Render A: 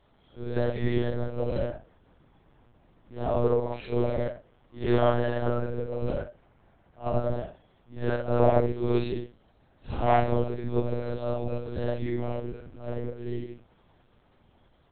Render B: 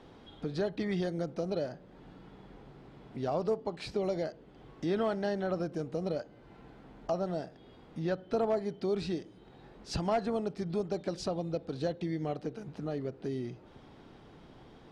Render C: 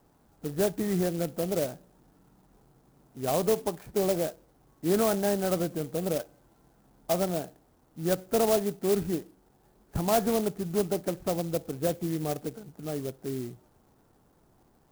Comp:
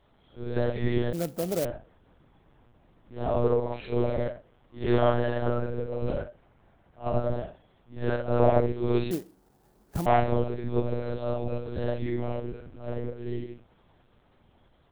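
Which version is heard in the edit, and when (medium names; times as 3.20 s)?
A
1.13–1.65 s: from C
9.11–10.06 s: from C
not used: B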